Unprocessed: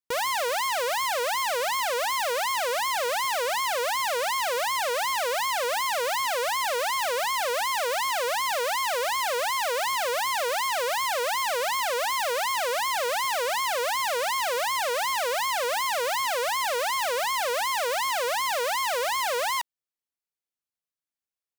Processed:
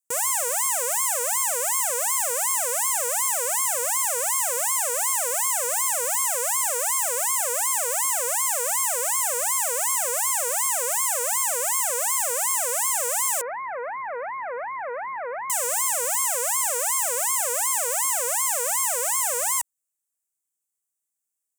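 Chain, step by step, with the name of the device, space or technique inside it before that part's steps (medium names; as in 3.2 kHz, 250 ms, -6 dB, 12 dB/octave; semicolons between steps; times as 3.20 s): budget condenser microphone (high-pass 100 Hz 6 dB/octave; resonant high shelf 5.7 kHz +12 dB, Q 3); 13.41–15.50 s: steep low-pass 2.2 kHz 72 dB/octave; trim -3 dB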